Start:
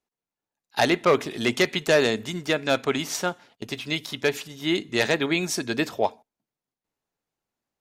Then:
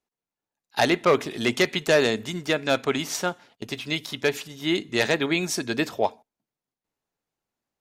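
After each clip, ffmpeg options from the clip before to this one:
ffmpeg -i in.wav -af anull out.wav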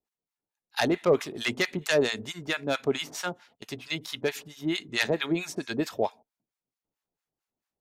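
ffmpeg -i in.wav -filter_complex "[0:a]acrossover=split=860[link_01][link_02];[link_01]aeval=exprs='val(0)*(1-1/2+1/2*cos(2*PI*4.5*n/s))':channel_layout=same[link_03];[link_02]aeval=exprs='val(0)*(1-1/2-1/2*cos(2*PI*4.5*n/s))':channel_layout=same[link_04];[link_03][link_04]amix=inputs=2:normalize=0" out.wav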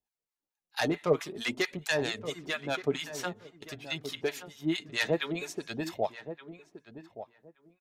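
ffmpeg -i in.wav -filter_complex "[0:a]flanger=delay=1.1:depth=5.7:regen=31:speed=0.51:shape=sinusoidal,asplit=2[link_01][link_02];[link_02]adelay=1173,lowpass=frequency=1300:poles=1,volume=-11.5dB,asplit=2[link_03][link_04];[link_04]adelay=1173,lowpass=frequency=1300:poles=1,volume=0.19[link_05];[link_01][link_03][link_05]amix=inputs=3:normalize=0" out.wav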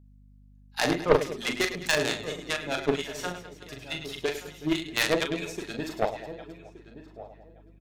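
ffmpeg -i in.wav -af "aecho=1:1:40|104|206.4|370.2|632.4:0.631|0.398|0.251|0.158|0.1,aeval=exprs='0.282*(cos(1*acos(clip(val(0)/0.282,-1,1)))-cos(1*PI/2))+0.01*(cos(3*acos(clip(val(0)/0.282,-1,1)))-cos(3*PI/2))+0.0708*(cos(6*acos(clip(val(0)/0.282,-1,1)))-cos(6*PI/2))+0.0178*(cos(7*acos(clip(val(0)/0.282,-1,1)))-cos(7*PI/2))+0.0447*(cos(8*acos(clip(val(0)/0.282,-1,1)))-cos(8*PI/2))':channel_layout=same,aeval=exprs='val(0)+0.00126*(sin(2*PI*50*n/s)+sin(2*PI*2*50*n/s)/2+sin(2*PI*3*50*n/s)/3+sin(2*PI*4*50*n/s)/4+sin(2*PI*5*50*n/s)/5)':channel_layout=same,volume=5dB" out.wav

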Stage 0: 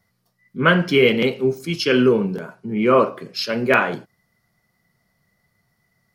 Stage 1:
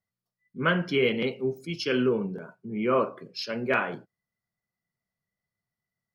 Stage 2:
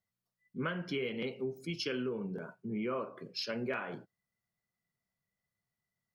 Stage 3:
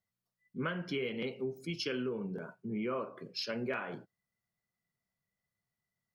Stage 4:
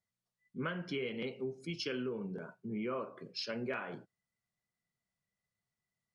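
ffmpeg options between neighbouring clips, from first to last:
ffmpeg -i in.wav -af "afftdn=noise_reduction=13:noise_floor=-42,volume=-9dB" out.wav
ffmpeg -i in.wav -af "acompressor=threshold=-32dB:ratio=6,volume=-1.5dB" out.wav
ffmpeg -i in.wav -af anull out.wav
ffmpeg -i in.wav -af "aresample=22050,aresample=44100,volume=-2dB" out.wav

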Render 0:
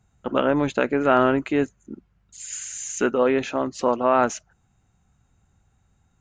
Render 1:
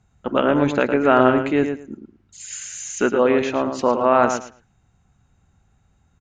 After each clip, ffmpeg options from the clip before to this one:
ffmpeg -i in.wav -filter_complex "[0:a]lowpass=7400,asplit=2[link_01][link_02];[link_02]adelay=110,lowpass=frequency=3800:poles=1,volume=-7dB,asplit=2[link_03][link_04];[link_04]adelay=110,lowpass=frequency=3800:poles=1,volume=0.18,asplit=2[link_05][link_06];[link_06]adelay=110,lowpass=frequency=3800:poles=1,volume=0.18[link_07];[link_01][link_03][link_05][link_07]amix=inputs=4:normalize=0,volume=2.5dB" out.wav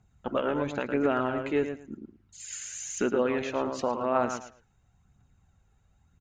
ffmpeg -i in.wav -af "alimiter=limit=-9.5dB:level=0:latency=1:release=359,aphaser=in_gain=1:out_gain=1:delay=2.4:decay=0.36:speed=0.96:type=triangular,volume=-6.5dB" out.wav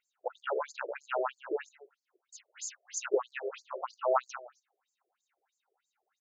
ffmpeg -i in.wav -af "afftfilt=real='re*between(b*sr/1024,470*pow(6200/470,0.5+0.5*sin(2*PI*3.1*pts/sr))/1.41,470*pow(6200/470,0.5+0.5*sin(2*PI*3.1*pts/sr))*1.41)':imag='im*between(b*sr/1024,470*pow(6200/470,0.5+0.5*sin(2*PI*3.1*pts/sr))/1.41,470*pow(6200/470,0.5+0.5*sin(2*PI*3.1*pts/sr))*1.41)':win_size=1024:overlap=0.75,volume=2.5dB" out.wav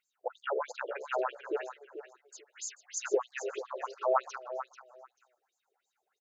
ffmpeg -i in.wav -af "aecho=1:1:439|878:0.282|0.0451" out.wav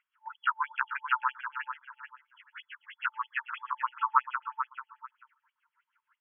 ffmpeg -i in.wav -filter_complex "[0:a]asplit=2[link_01][link_02];[link_02]acompressor=threshold=-39dB:ratio=6,volume=0.5dB[link_03];[link_01][link_03]amix=inputs=2:normalize=0,afftfilt=real='re*between(b*sr/4096,880,3400)':imag='im*between(b*sr/4096,880,3400)':win_size=4096:overlap=0.75,equalizer=frequency=1300:width=0.6:gain=13,volume=-6.5dB" out.wav

